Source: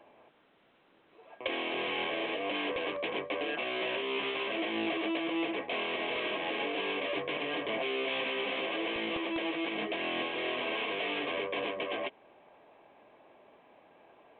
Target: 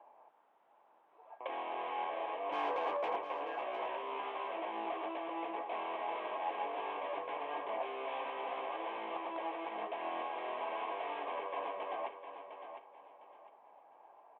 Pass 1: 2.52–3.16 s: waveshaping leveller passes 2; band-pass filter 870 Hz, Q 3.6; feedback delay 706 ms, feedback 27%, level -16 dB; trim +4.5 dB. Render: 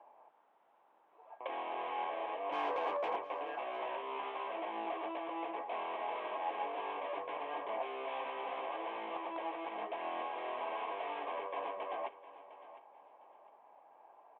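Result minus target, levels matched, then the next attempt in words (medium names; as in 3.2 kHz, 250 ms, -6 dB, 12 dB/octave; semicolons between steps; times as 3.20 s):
echo-to-direct -6.5 dB
2.52–3.16 s: waveshaping leveller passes 2; band-pass filter 870 Hz, Q 3.6; feedback delay 706 ms, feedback 27%, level -9.5 dB; trim +4.5 dB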